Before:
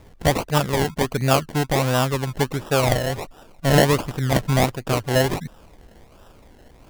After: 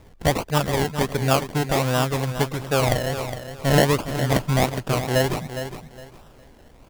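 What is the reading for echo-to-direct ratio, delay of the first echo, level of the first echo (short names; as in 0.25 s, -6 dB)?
-9.5 dB, 0.411 s, -10.0 dB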